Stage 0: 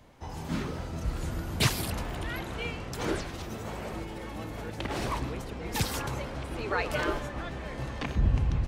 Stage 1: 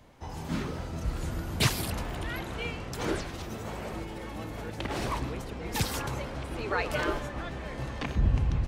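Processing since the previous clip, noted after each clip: no audible change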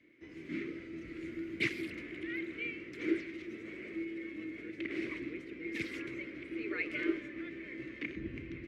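two resonant band-passes 840 Hz, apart 2.7 oct; trim +4.5 dB

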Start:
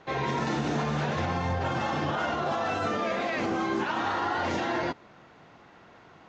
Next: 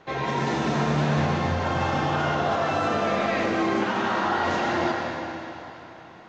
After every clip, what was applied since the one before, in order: algorithmic reverb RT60 3.3 s, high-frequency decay 0.95×, pre-delay 40 ms, DRR -0.5 dB; trim +1 dB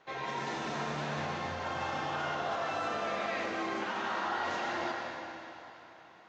bass shelf 360 Hz -11.5 dB; trim -7.5 dB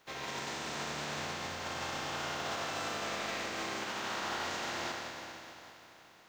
spectral contrast reduction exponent 0.51; trim -3 dB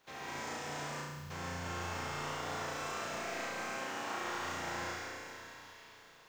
spectral selection erased 1.02–1.31 s, 220–10000 Hz; flutter echo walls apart 5.9 m, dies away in 1.2 s; dynamic bell 3.8 kHz, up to -8 dB, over -52 dBFS, Q 1.4; trim -5 dB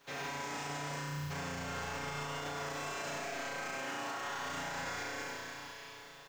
comb 7.1 ms, depth 89%; peak limiter -34.5 dBFS, peak gain reduction 10 dB; trim +3.5 dB

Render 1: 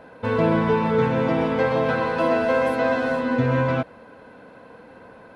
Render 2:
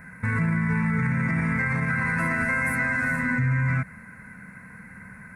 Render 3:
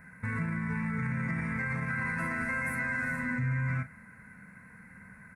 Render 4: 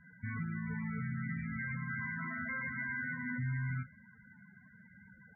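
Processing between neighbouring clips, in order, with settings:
FFT filter 120 Hz 0 dB, 190 Hz +3 dB, 290 Hz -18 dB, 520 Hz -25 dB, 800 Hz -19 dB, 2.1 kHz +7 dB, 3.1 kHz -29 dB, 8.7 kHz +6 dB; peak limiter -24.5 dBFS, peak gain reduction 10.5 dB; trim +8 dB
doubling 40 ms -11.5 dB; trim -8 dB
band noise 270–1000 Hz -62 dBFS; loudest bins only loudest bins 16; trim -5.5 dB

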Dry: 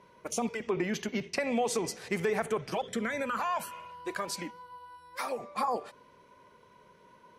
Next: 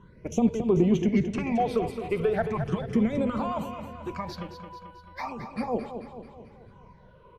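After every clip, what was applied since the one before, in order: RIAA curve playback; phase shifter stages 8, 0.37 Hz, lowest notch 220–1900 Hz; on a send: feedback delay 219 ms, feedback 53%, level -9 dB; on the sum: trim +4 dB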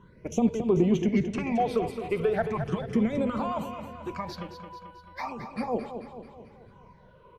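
bass shelf 140 Hz -4 dB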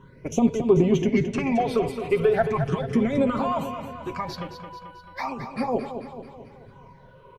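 comb 7.4 ms, depth 47%; trim +4 dB

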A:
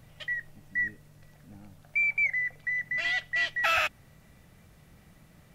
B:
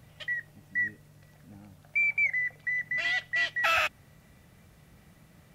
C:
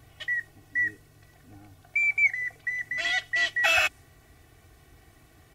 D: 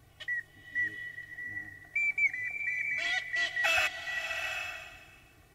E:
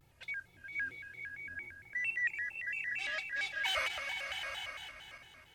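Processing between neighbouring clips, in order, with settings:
high-pass 41 Hz
dynamic bell 7.5 kHz, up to +6 dB, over -50 dBFS, Q 0.9; comb 2.7 ms, depth 94%
swelling reverb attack 780 ms, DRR 5.5 dB; trim -5.5 dB
backward echo that repeats 259 ms, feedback 53%, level -8 dB; vibrato with a chosen wave square 4.4 Hz, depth 250 cents; trim -6.5 dB

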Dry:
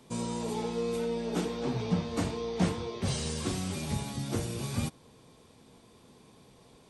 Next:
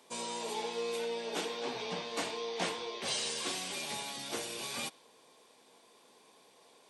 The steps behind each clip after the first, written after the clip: high-pass 510 Hz 12 dB/octave; band-stop 1.3 kHz, Q 14; dynamic bell 3.1 kHz, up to +5 dB, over -55 dBFS, Q 0.95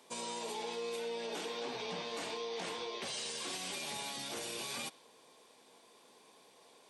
peak limiter -31.5 dBFS, peak gain reduction 10.5 dB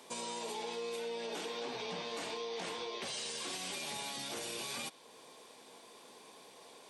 compression 1.5:1, threshold -55 dBFS, peak gain reduction 6.5 dB; trim +6 dB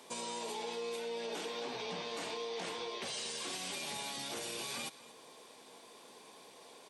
delay 230 ms -17.5 dB

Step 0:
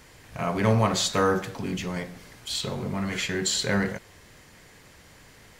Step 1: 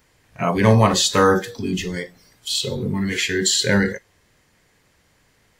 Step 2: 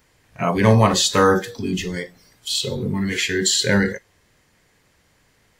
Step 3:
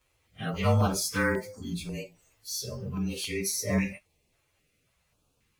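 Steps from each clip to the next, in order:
spectral noise reduction 16 dB; trim +7.5 dB
no audible change
frequency axis rescaled in octaves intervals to 112%; step-sequenced notch 3.7 Hz 210–2900 Hz; trim -7 dB

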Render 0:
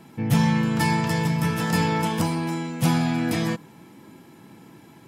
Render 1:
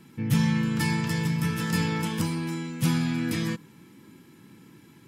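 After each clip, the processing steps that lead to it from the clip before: peaking EQ 700 Hz -14.5 dB 0.77 oct; trim -2.5 dB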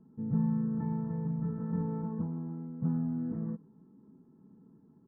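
Gaussian low-pass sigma 9.7 samples; comb 4.6 ms, depth 55%; trim -7.5 dB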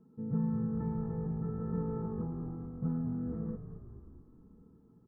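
small resonant body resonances 470/1300 Hz, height 9 dB, ringing for 45 ms; on a send: frequency-shifting echo 217 ms, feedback 61%, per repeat -48 Hz, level -10 dB; on the sum: trim -3 dB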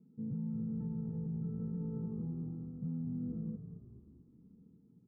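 band-pass filter 180 Hz, Q 1.2; peak limiter -32 dBFS, peak gain reduction 8 dB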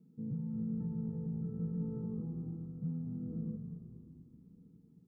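simulated room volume 3000 m³, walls mixed, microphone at 0.58 m

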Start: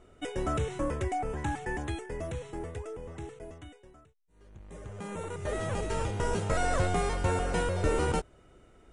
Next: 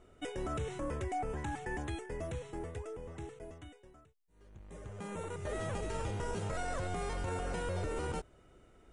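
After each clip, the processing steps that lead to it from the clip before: peak limiter -25.5 dBFS, peak gain reduction 10 dB; trim -3.5 dB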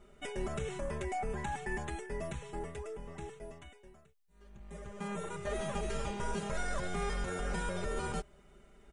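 peaking EQ 380 Hz -3 dB 1.4 oct; comb 5 ms, depth 92%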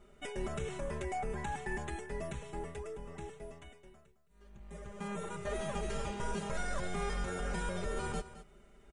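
delay 215 ms -14.5 dB; trim -1 dB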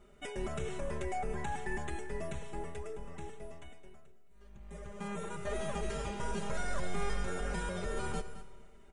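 algorithmic reverb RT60 1.7 s, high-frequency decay 0.95×, pre-delay 35 ms, DRR 14.5 dB

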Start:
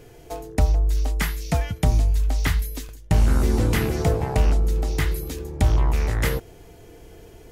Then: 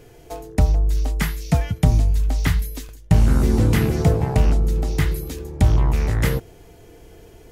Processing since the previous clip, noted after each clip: dynamic bell 150 Hz, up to +7 dB, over -33 dBFS, Q 0.74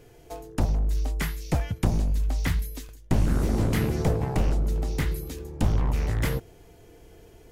one-sided wavefolder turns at -14.5 dBFS; trim -5.5 dB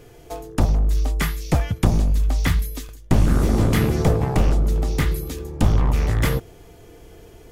small resonant body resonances 1.2/3.4 kHz, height 7 dB; trim +6 dB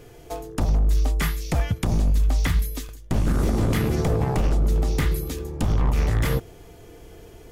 peak limiter -13 dBFS, peak gain reduction 9 dB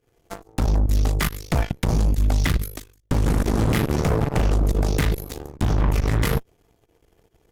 volume shaper 140 bpm, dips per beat 1, -14 dB, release 79 ms; Chebyshev shaper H 4 -12 dB, 7 -18 dB, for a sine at -12.5 dBFS

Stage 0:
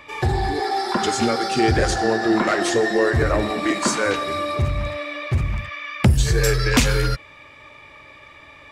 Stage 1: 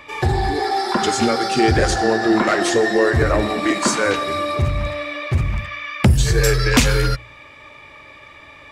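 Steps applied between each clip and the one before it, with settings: de-hum 58.71 Hz, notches 3; trim +2.5 dB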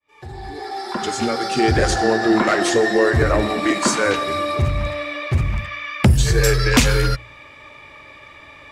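fade-in on the opening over 1.94 s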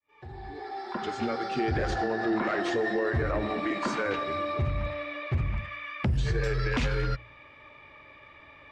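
low-pass 3.2 kHz 12 dB/octave; peak limiter -11 dBFS, peak gain reduction 7 dB; trim -8.5 dB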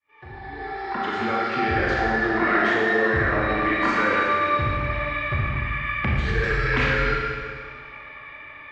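FFT filter 600 Hz 0 dB, 1.9 kHz +9 dB, 7.9 kHz -9 dB; Schroeder reverb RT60 1.9 s, combs from 28 ms, DRR -3 dB

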